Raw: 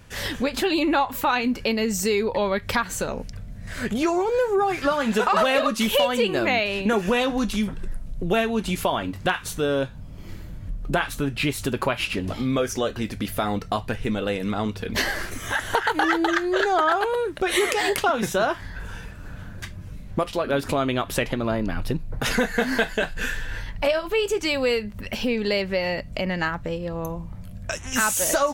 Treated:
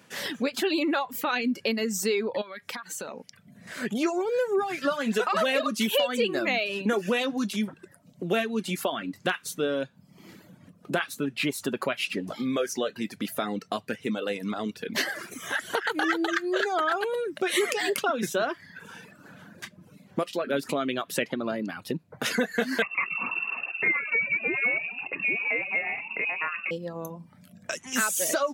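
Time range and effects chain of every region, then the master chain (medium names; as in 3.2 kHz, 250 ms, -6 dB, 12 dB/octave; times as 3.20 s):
2.41–3.45 s: bass shelf 390 Hz -8 dB + compression 10:1, threshold -28 dBFS
22.82–26.71 s: frequency-shifting echo 126 ms, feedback 55%, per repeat -100 Hz, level -11.5 dB + frequency inversion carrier 2.7 kHz
whole clip: reverb removal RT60 0.71 s; high-pass 170 Hz 24 dB/octave; dynamic bell 900 Hz, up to -8 dB, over -40 dBFS, Q 2.6; trim -2.5 dB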